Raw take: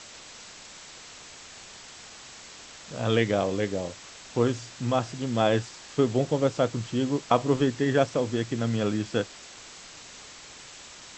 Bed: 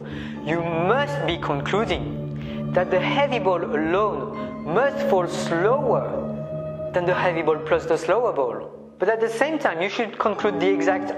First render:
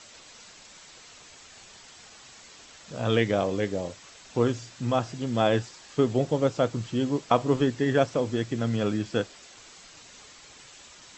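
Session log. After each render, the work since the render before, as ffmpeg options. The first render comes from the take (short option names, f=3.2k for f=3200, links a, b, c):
-af "afftdn=nr=6:nf=-46"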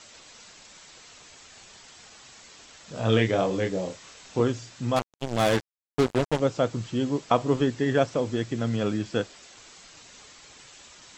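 -filter_complex "[0:a]asettb=1/sr,asplit=3[a][b][c];[a]atrim=end=2.934[d];[b]atrim=start=2.93:end=4.41,asetpts=PTS-STARTPTS,afade=t=in:d=0.004:c=qsin,afade=t=out:st=1.476:d=0.004:c=qsin,asplit=2[e][f];[f]adelay=27,volume=-4.5dB[g];[e][g]amix=inputs=2:normalize=0,atrim=end_sample=65268[h];[c]atrim=start=4.406[i];[d][h]acrossfade=d=0.004:c1=hsin:c2=qsin[j];[j][i]acrossfade=d=0.004:c1=qsin:c2=hsin,asettb=1/sr,asplit=3[k][l][m];[k]atrim=end=4.964[n];[l]atrim=start=4.96:end=6.4,asetpts=PTS-STARTPTS,afade=t=in:d=0.004:c=qsin,afade=t=out:st=1.436:d=0.004:c=qsin,acrusher=bits=3:mix=0:aa=0.5[o];[m]atrim=start=6.396[p];[n][o]acrossfade=d=0.004:c1=hsin:c2=qsin[q];[q][p]acrossfade=d=0.004:c1=qsin:c2=hsin"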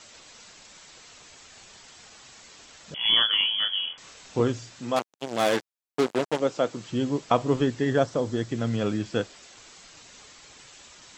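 -filter_complex "[0:a]asettb=1/sr,asplit=3[a][b][c];[a]atrim=end=2.944[d];[b]atrim=start=2.94:end=3.98,asetpts=PTS-STARTPTS,afade=t=in:d=0.004:c=qsin,afade=t=out:st=1.036:d=0.004:c=qsin,lowpass=f=3k:t=q:w=0.5098,lowpass=f=3k:t=q:w=0.6013,lowpass=f=3k:t=q:w=0.9,lowpass=f=3k:t=q:w=2.563,afreqshift=-3500[e];[c]atrim=start=3.976[f];[d][e]acrossfade=d=0.004:c1=hsin:c2=qsin[g];[g][f]acrossfade=d=0.004:c1=qsin:c2=hsin,asettb=1/sr,asplit=3[h][i][j];[h]atrim=end=4.794[k];[i]atrim=start=4.79:end=6.89,asetpts=PTS-STARTPTS,afade=t=in:d=0.004:c=qsin,afade=t=out:st=2.096:d=0.004:c=qsin,highpass=240[l];[j]atrim=start=6.886[m];[k][l]acrossfade=d=0.004:c1=hsin:c2=qsin[n];[n][m]acrossfade=d=0.004:c1=qsin:c2=hsin,asettb=1/sr,asplit=3[o][p][q];[o]atrim=end=7.894[r];[p]atrim=start=7.89:end=8.49,asetpts=PTS-STARTPTS,afade=t=in:d=0.004:c=qsin,afade=t=out:st=0.596:d=0.004:c=qsin,equalizer=f=2.5k:t=o:w=0.46:g=-7.5[s];[q]atrim=start=8.486[t];[r][s]acrossfade=d=0.004:c1=hsin:c2=qsin[u];[u][t]acrossfade=d=0.004:c1=qsin:c2=hsin"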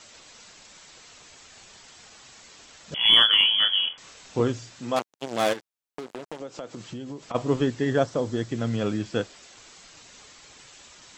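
-filter_complex "[0:a]asettb=1/sr,asplit=3[a][b][c];[a]atrim=end=2.924[d];[b]atrim=start=2.92:end=3.89,asetpts=PTS-STARTPTS,afade=t=in:d=0.004:c=qsin,afade=t=out:st=0.966:d=0.004:c=qsin,acontrast=21[e];[c]atrim=start=3.886[f];[d][e]acrossfade=d=0.004:c1=hsin:c2=qsin[g];[g][f]acrossfade=d=0.004:c1=qsin:c2=hsin,asplit=3[h][i][j];[h]afade=t=out:st=5.52:d=0.02[k];[i]acompressor=threshold=-32dB:ratio=12:attack=3.2:release=140:knee=1:detection=peak,afade=t=in:st=5.52:d=0.02,afade=t=out:st=7.34:d=0.02[l];[j]afade=t=in:st=7.34:d=0.02[m];[k][l][m]amix=inputs=3:normalize=0"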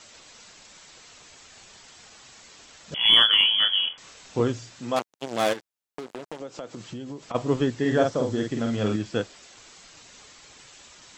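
-filter_complex "[0:a]asettb=1/sr,asplit=3[a][b][c];[a]atrim=end=7.804[d];[b]atrim=start=7.8:end=8.96,asetpts=PTS-STARTPTS,afade=t=in:d=0.004:c=qsin,afade=t=out:st=1.156:d=0.004:c=qsin,asplit=2[e][f];[f]adelay=47,volume=-3.5dB[g];[e][g]amix=inputs=2:normalize=0,atrim=end_sample=51156[h];[c]atrim=start=8.956[i];[d][h]acrossfade=d=0.004:c1=hsin:c2=qsin[j];[j][i]acrossfade=d=0.004:c1=qsin:c2=hsin"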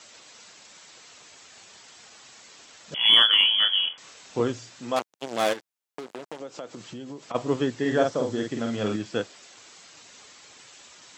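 -af "highpass=58,lowshelf=f=130:g=-10"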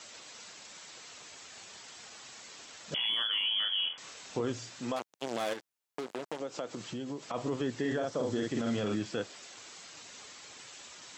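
-af "acompressor=threshold=-25dB:ratio=6,alimiter=limit=-23.5dB:level=0:latency=1:release=14"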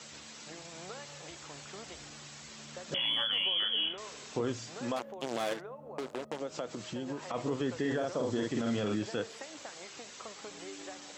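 -filter_complex "[1:a]volume=-26.5dB[a];[0:a][a]amix=inputs=2:normalize=0"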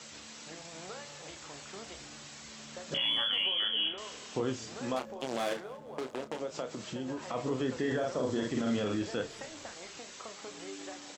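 -filter_complex "[0:a]asplit=2[a][b];[b]adelay=31,volume=-9dB[c];[a][c]amix=inputs=2:normalize=0,asplit=5[d][e][f][g][h];[e]adelay=236,afreqshift=-35,volume=-21.5dB[i];[f]adelay=472,afreqshift=-70,volume=-26.5dB[j];[g]adelay=708,afreqshift=-105,volume=-31.6dB[k];[h]adelay=944,afreqshift=-140,volume=-36.6dB[l];[d][i][j][k][l]amix=inputs=5:normalize=0"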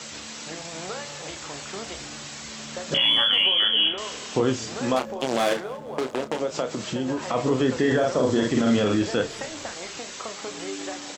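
-af "volume=10.5dB"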